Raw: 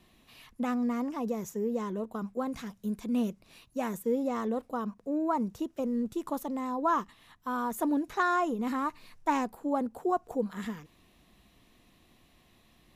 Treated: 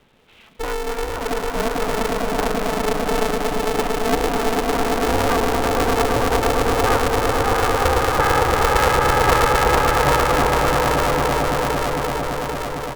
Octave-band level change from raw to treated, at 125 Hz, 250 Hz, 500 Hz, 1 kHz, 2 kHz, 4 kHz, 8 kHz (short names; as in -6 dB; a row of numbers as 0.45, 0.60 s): +22.0, +5.5, +15.5, +15.0, +19.5, +25.5, +21.5 dB